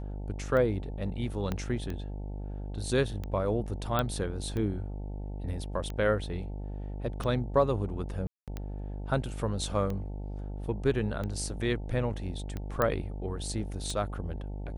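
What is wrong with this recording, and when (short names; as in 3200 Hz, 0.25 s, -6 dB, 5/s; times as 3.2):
buzz 50 Hz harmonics 18 -37 dBFS
tick 45 rpm -23 dBFS
1.52 pop -18 dBFS
3.99 pop -14 dBFS
8.27–8.48 gap 0.207 s
12.82 pop -13 dBFS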